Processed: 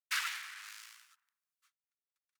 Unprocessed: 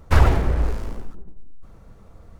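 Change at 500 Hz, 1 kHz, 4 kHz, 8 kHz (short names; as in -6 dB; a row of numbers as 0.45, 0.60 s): under -40 dB, -18.0 dB, -1.5 dB, n/a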